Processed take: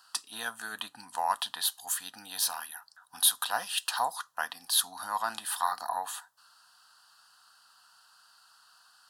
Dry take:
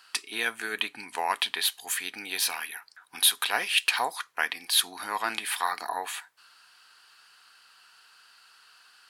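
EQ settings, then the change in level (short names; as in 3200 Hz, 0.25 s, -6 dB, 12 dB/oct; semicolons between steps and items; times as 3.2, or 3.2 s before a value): fixed phaser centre 930 Hz, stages 4; 0.0 dB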